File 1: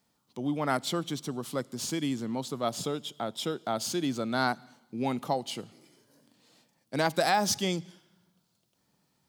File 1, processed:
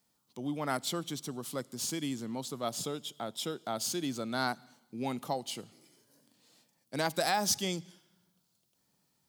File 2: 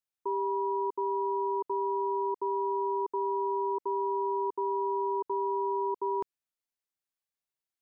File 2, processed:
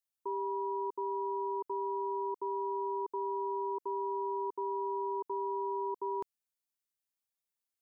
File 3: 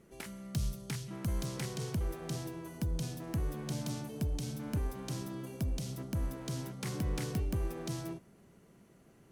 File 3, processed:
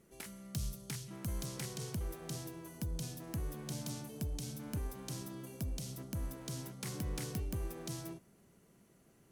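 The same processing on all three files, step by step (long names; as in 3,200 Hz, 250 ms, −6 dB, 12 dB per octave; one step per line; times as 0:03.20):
high-shelf EQ 5,100 Hz +8 dB
level −5 dB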